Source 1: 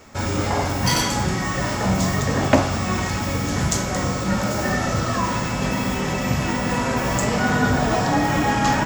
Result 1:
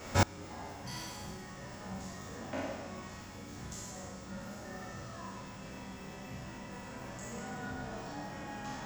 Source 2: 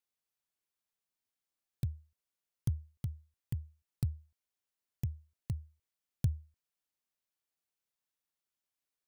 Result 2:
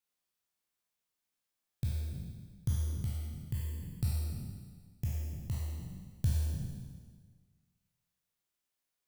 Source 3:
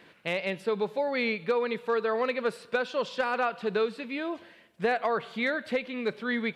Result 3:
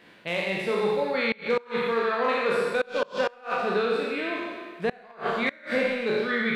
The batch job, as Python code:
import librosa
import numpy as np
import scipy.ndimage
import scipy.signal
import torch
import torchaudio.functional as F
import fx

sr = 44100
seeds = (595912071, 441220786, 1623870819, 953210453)

y = fx.spec_trails(x, sr, decay_s=1.6)
y = fx.rev_schroeder(y, sr, rt60_s=0.4, comb_ms=31, drr_db=3.0)
y = fx.gate_flip(y, sr, shuts_db=-12.0, range_db=-26)
y = F.gain(torch.from_numpy(y), -1.5).numpy()